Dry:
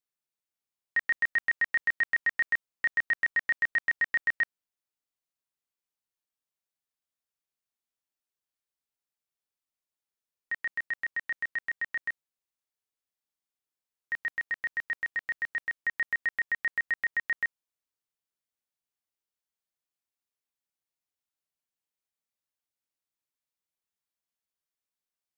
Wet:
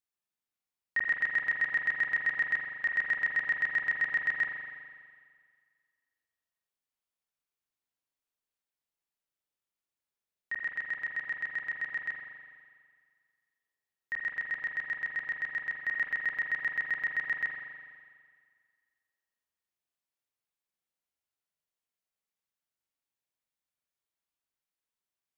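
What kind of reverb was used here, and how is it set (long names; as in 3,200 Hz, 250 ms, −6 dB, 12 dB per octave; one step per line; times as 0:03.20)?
spring reverb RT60 1.9 s, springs 41 ms, chirp 60 ms, DRR 0 dB
level −3 dB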